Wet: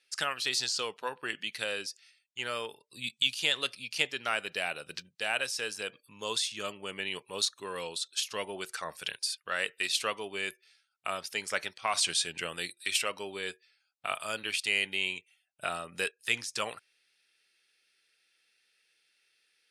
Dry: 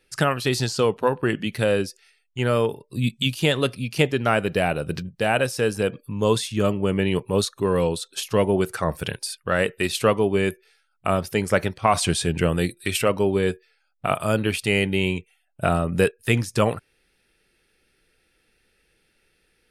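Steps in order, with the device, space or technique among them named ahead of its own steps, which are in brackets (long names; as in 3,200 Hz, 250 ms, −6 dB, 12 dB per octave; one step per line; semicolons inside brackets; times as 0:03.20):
piezo pickup straight into a mixer (low-pass filter 5,200 Hz 12 dB per octave; first difference)
level +5.5 dB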